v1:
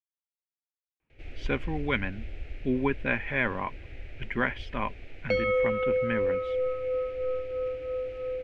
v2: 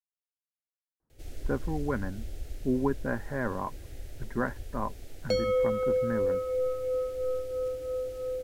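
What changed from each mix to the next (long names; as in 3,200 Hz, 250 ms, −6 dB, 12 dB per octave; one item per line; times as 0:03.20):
speech: add Butterworth low-pass 1,700 Hz
master: remove low-pass with resonance 2,400 Hz, resonance Q 4.1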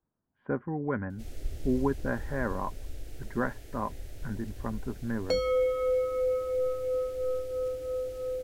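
speech: entry −1.00 s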